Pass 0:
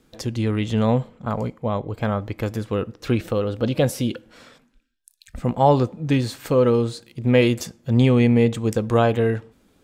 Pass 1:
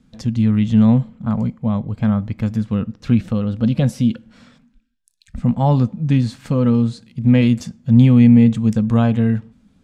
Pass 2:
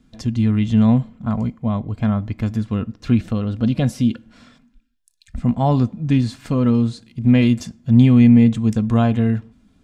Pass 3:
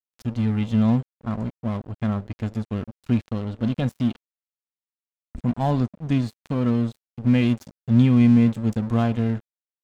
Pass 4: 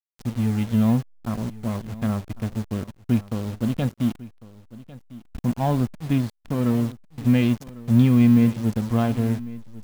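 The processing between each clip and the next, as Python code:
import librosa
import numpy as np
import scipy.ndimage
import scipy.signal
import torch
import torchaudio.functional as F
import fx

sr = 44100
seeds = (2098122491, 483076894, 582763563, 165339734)

y1 = scipy.signal.sosfilt(scipy.signal.butter(2, 8400.0, 'lowpass', fs=sr, output='sos'), x)
y1 = fx.low_shelf_res(y1, sr, hz=280.0, db=7.5, q=3.0)
y1 = F.gain(torch.from_numpy(y1), -3.0).numpy()
y2 = y1 + 0.39 * np.pad(y1, (int(2.9 * sr / 1000.0), 0))[:len(y1)]
y3 = np.sign(y2) * np.maximum(np.abs(y2) - 10.0 ** (-30.5 / 20.0), 0.0)
y3 = F.gain(torch.from_numpy(y3), -4.0).numpy()
y4 = fx.delta_hold(y3, sr, step_db=-36.0)
y4 = y4 + 10.0 ** (-18.5 / 20.0) * np.pad(y4, (int(1100 * sr / 1000.0), 0))[:len(y4)]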